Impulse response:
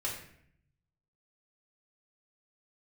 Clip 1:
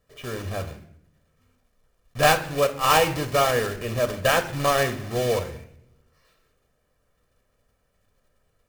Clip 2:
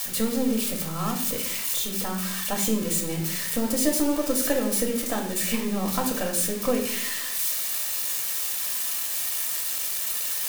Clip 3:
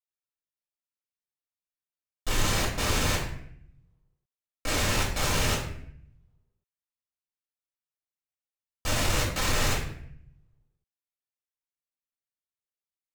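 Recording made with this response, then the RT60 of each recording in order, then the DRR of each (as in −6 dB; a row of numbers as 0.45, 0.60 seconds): 3; 0.65, 0.65, 0.65 seconds; 8.0, 0.0, −5.5 decibels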